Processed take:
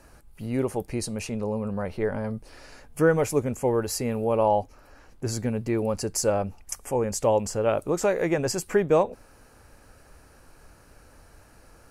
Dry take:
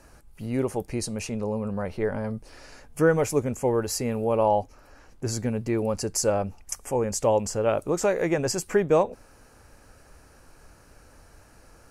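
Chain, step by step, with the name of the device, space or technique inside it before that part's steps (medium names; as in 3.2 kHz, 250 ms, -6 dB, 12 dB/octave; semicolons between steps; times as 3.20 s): exciter from parts (in parallel at -11.5 dB: high-pass 4.3 kHz 24 dB/octave + saturation -21.5 dBFS, distortion -17 dB + high-pass 4.4 kHz)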